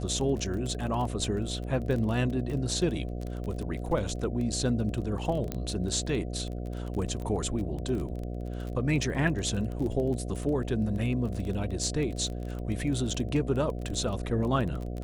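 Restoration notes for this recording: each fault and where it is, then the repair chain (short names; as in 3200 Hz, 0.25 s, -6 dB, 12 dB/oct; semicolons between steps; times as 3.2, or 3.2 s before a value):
buzz 60 Hz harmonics 12 -35 dBFS
crackle 22/s -33 dBFS
5.52 pop -17 dBFS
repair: de-click; de-hum 60 Hz, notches 12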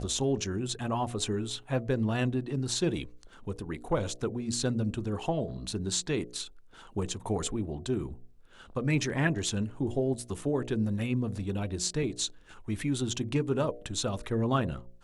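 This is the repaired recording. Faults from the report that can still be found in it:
none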